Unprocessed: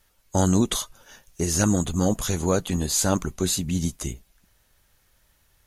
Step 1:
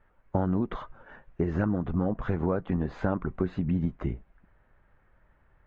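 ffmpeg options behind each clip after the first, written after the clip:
ffmpeg -i in.wav -af "lowpass=frequency=1800:width=0.5412,lowpass=frequency=1800:width=1.3066,equalizer=frequency=78:width_type=o:width=0.44:gain=-4.5,acompressor=threshold=-26dB:ratio=6,volume=3dB" out.wav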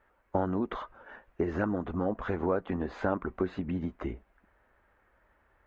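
ffmpeg -i in.wav -af "highpass=frequency=99:poles=1,equalizer=frequency=140:width=1.7:gain=-14.5,volume=1.5dB" out.wav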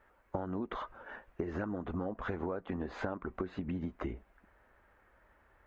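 ffmpeg -i in.wav -af "acompressor=threshold=-35dB:ratio=6,volume=1.5dB" out.wav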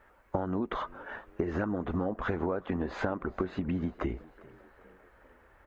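ffmpeg -i in.wav -filter_complex "[0:a]asplit=5[link_01][link_02][link_03][link_04][link_05];[link_02]adelay=399,afreqshift=63,volume=-23dB[link_06];[link_03]adelay=798,afreqshift=126,volume=-27.3dB[link_07];[link_04]adelay=1197,afreqshift=189,volume=-31.6dB[link_08];[link_05]adelay=1596,afreqshift=252,volume=-35.9dB[link_09];[link_01][link_06][link_07][link_08][link_09]amix=inputs=5:normalize=0,volume=5.5dB" out.wav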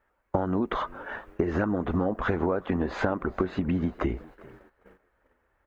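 ffmpeg -i in.wav -af "agate=range=-16dB:threshold=-54dB:ratio=16:detection=peak,volume=5dB" out.wav

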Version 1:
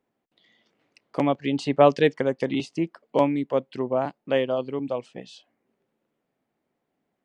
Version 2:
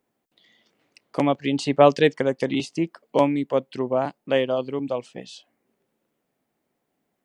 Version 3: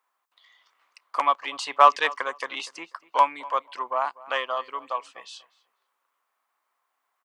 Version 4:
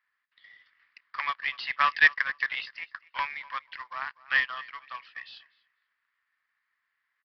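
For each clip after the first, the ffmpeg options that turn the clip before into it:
ffmpeg -i in.wav -af "highshelf=frequency=5800:gain=9,volume=1.5dB" out.wav
ffmpeg -i in.wav -filter_complex "[0:a]aeval=exprs='0.891*(cos(1*acos(clip(val(0)/0.891,-1,1)))-cos(1*PI/2))+0.0224*(cos(8*acos(clip(val(0)/0.891,-1,1)))-cos(8*PI/2))':channel_layout=same,highpass=frequency=1100:width_type=q:width=4.9,asplit=2[link_01][link_02];[link_02]adelay=244,lowpass=frequency=3200:poles=1,volume=-20dB,asplit=2[link_03][link_04];[link_04]adelay=244,lowpass=frequency=3200:poles=1,volume=0.2[link_05];[link_01][link_03][link_05]amix=inputs=3:normalize=0,volume=-1dB" out.wav
ffmpeg -i in.wav -af "highpass=frequency=1800:width_type=q:width=5.8,aresample=11025,acrusher=bits=4:mode=log:mix=0:aa=0.000001,aresample=44100,volume=-6dB" out.wav

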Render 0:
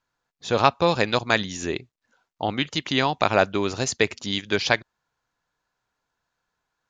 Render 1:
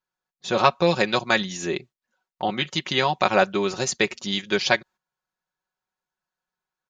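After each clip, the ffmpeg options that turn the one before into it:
ffmpeg -i in.wav -af "agate=range=-10dB:threshold=-46dB:ratio=16:detection=peak,lowshelf=frequency=78:gain=-7,aecho=1:1:5.4:0.7,volume=-1dB" out.wav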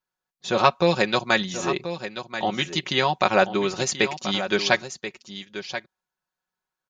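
ffmpeg -i in.wav -af "aecho=1:1:1033:0.282" out.wav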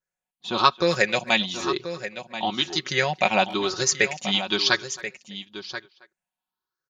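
ffmpeg -i in.wav -filter_complex "[0:a]afftfilt=real='re*pow(10,11/40*sin(2*PI*(0.54*log(max(b,1)*sr/1024/100)/log(2)-(1)*(pts-256)/sr)))':imag='im*pow(10,11/40*sin(2*PI*(0.54*log(max(b,1)*sr/1024/100)/log(2)-(1)*(pts-256)/sr)))':win_size=1024:overlap=0.75,asplit=2[link_01][link_02];[link_02]adelay=270,highpass=300,lowpass=3400,asoftclip=type=hard:threshold=-9dB,volume=-19dB[link_03];[link_01][link_03]amix=inputs=2:normalize=0,adynamicequalizer=threshold=0.0282:dfrequency=1600:dqfactor=0.7:tfrequency=1600:tqfactor=0.7:attack=5:release=100:ratio=0.375:range=3:mode=boostabove:tftype=highshelf,volume=-4.5dB" out.wav

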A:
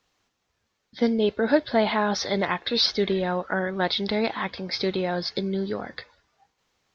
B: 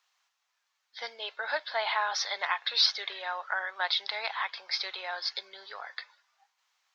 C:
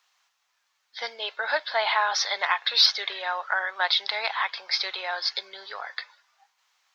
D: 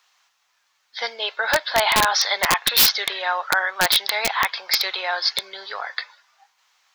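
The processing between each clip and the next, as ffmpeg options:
ffmpeg -i in.wav -af "highpass=frequency=840:width=0.5412,highpass=frequency=840:width=1.3066,volume=-1.5dB" out.wav
ffmpeg -i in.wav -af "acontrast=44" out.wav
ffmpeg -i in.wav -af "aeval=exprs='(mod(5.01*val(0)+1,2)-1)/5.01':channel_layout=same,volume=6dB" out.wav

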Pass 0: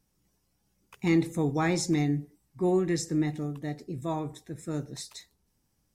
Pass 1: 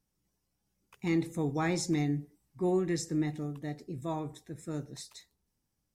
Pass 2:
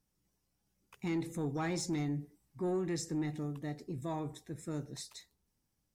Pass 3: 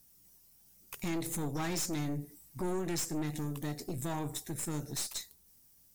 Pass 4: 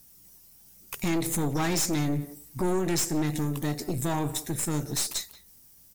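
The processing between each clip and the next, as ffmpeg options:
ffmpeg -i in.wav -af "dynaudnorm=framelen=210:gausssize=11:maxgain=4dB,volume=-7.5dB" out.wav
ffmpeg -i in.wav -filter_complex "[0:a]asplit=2[link_01][link_02];[link_02]alimiter=level_in=6.5dB:limit=-24dB:level=0:latency=1:release=113,volume=-6.5dB,volume=1dB[link_03];[link_01][link_03]amix=inputs=2:normalize=0,asoftclip=type=tanh:threshold=-20.5dB,volume=-6.5dB" out.wav
ffmpeg -i in.wav -af "aemphasis=mode=production:type=75fm,acompressor=threshold=-43dB:ratio=2,aeval=exprs='0.0473*(cos(1*acos(clip(val(0)/0.0473,-1,1)))-cos(1*PI/2))+0.00944*(cos(4*acos(clip(val(0)/0.0473,-1,1)))-cos(4*PI/2))+0.0188*(cos(5*acos(clip(val(0)/0.0473,-1,1)))-cos(5*PI/2))+0.00668*(cos(8*acos(clip(val(0)/0.0473,-1,1)))-cos(8*PI/2))':channel_layout=same,volume=-2dB" out.wav
ffmpeg -i in.wav -filter_complex "[0:a]asplit=2[link_01][link_02];[link_02]adelay=180,highpass=300,lowpass=3400,asoftclip=type=hard:threshold=-35dB,volume=-15dB[link_03];[link_01][link_03]amix=inputs=2:normalize=0,volume=8dB" out.wav

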